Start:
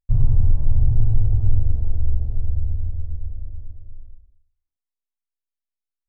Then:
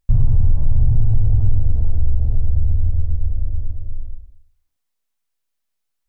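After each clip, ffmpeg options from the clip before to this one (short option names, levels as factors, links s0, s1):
-filter_complex "[0:a]bandreject=f=370:w=12,asplit=2[s0][s1];[s1]alimiter=limit=0.141:level=0:latency=1:release=11,volume=1.26[s2];[s0][s2]amix=inputs=2:normalize=0,acompressor=threshold=0.112:ratio=2,volume=1.78"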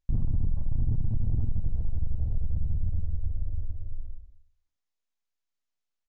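-af "aeval=exprs='0.596*(cos(1*acos(clip(val(0)/0.596,-1,1)))-cos(1*PI/2))+0.237*(cos(2*acos(clip(val(0)/0.596,-1,1)))-cos(2*PI/2))':c=same,asoftclip=type=tanh:threshold=0.335,aresample=16000,aresample=44100,volume=0.376"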